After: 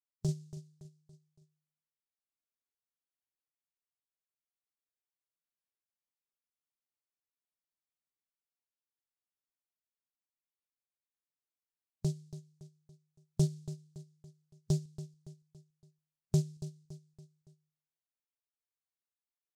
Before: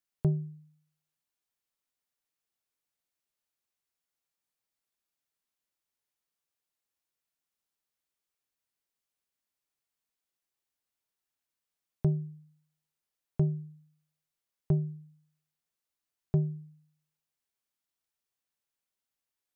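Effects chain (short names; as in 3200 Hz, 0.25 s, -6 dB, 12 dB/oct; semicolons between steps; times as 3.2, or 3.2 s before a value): spectral noise reduction 11 dB; random-step tremolo 3.5 Hz; on a send: feedback echo 0.282 s, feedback 46%, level -14 dB; on the sum: noise-modulated delay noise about 5800 Hz, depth 0.09 ms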